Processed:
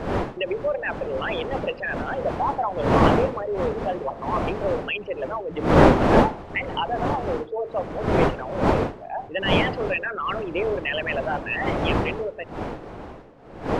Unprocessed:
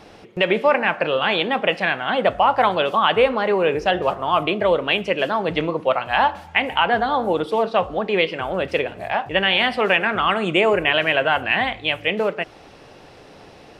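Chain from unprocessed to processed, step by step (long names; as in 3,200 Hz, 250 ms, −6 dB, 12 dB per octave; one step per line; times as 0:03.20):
spectral envelope exaggerated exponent 3
wind on the microphone 630 Hz −17 dBFS
level −8 dB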